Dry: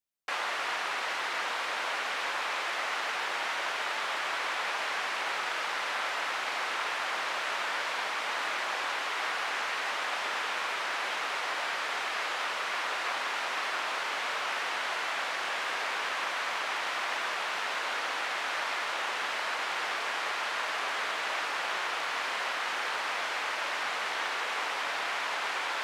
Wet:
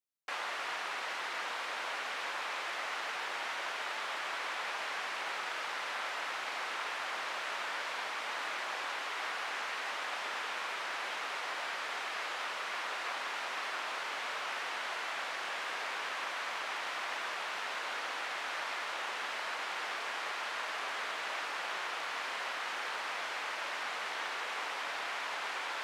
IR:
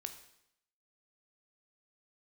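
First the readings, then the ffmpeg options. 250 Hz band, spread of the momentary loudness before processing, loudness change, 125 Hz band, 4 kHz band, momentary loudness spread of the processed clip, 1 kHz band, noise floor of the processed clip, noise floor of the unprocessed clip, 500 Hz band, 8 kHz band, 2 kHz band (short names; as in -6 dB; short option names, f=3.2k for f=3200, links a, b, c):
-5.5 dB, 0 LU, -5.5 dB, n/a, -5.5 dB, 0 LU, -5.5 dB, -39 dBFS, -34 dBFS, -5.5 dB, -5.5 dB, -5.5 dB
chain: -af "highpass=f=120:w=0.5412,highpass=f=120:w=1.3066,volume=-5.5dB"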